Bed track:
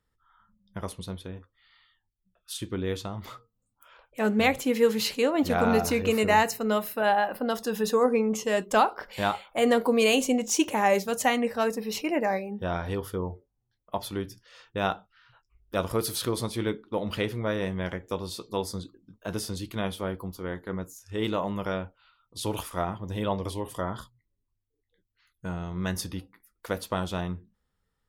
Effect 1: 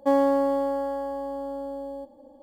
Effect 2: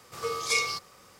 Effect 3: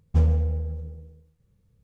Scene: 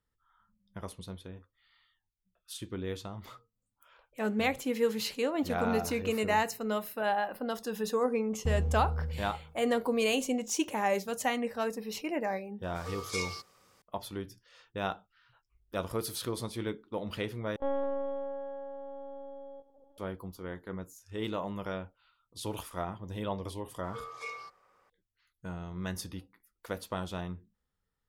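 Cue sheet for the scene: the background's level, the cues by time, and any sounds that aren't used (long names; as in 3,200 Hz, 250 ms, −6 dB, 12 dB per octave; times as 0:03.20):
bed track −6.5 dB
0:08.31: mix in 3 −2 dB + downward compressor 3 to 1, threshold −27 dBFS
0:12.63: mix in 2 −9.5 dB
0:17.56: overwrite with 1 −10.5 dB + linear-prediction vocoder at 8 kHz pitch kept
0:23.71: mix in 2 −8.5 dB + three-way crossover with the lows and the highs turned down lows −13 dB, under 450 Hz, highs −18 dB, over 2,100 Hz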